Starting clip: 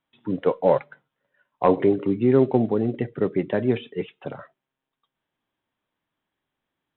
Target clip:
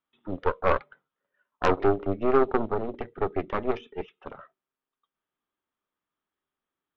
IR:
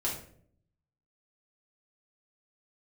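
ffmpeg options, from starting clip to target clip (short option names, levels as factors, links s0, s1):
-af "aeval=exprs='0.631*(cos(1*acos(clip(val(0)/0.631,-1,1)))-cos(1*PI/2))+0.2*(cos(6*acos(clip(val(0)/0.631,-1,1)))-cos(6*PI/2))':c=same,equalizer=f=125:t=o:w=0.33:g=-10,equalizer=f=400:t=o:w=0.33:g=5,equalizer=f=1250:t=o:w=0.33:g=9,volume=0.355"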